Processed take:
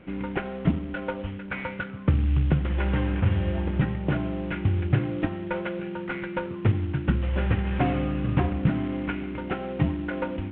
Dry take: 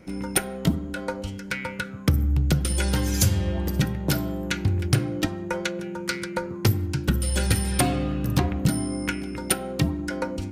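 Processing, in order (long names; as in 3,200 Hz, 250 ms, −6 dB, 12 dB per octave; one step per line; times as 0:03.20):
variable-slope delta modulation 16 kbit/s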